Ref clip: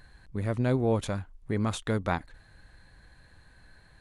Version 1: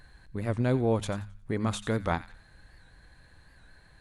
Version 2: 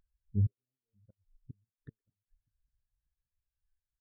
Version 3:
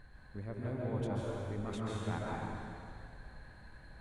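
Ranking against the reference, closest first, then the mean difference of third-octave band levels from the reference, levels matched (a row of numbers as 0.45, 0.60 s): 1, 3, 2; 1.0, 10.5, 17.5 dB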